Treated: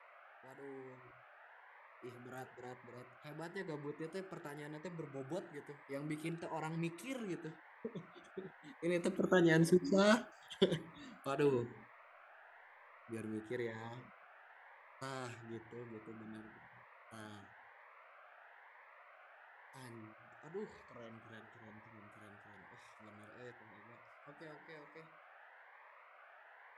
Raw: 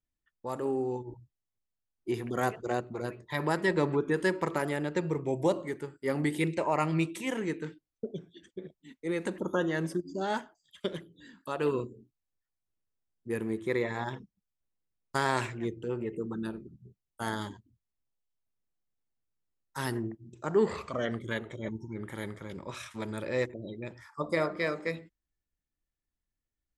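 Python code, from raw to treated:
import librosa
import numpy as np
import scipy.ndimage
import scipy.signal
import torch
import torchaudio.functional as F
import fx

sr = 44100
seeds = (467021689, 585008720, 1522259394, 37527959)

y = fx.doppler_pass(x, sr, speed_mps=8, closest_m=3.7, pass_at_s=10.13)
y = fx.dmg_noise_band(y, sr, seeds[0], low_hz=570.0, high_hz=2000.0, level_db=-64.0)
y = fx.notch_cascade(y, sr, direction='rising', hz=1.0)
y = y * 10.0 ** (6.5 / 20.0)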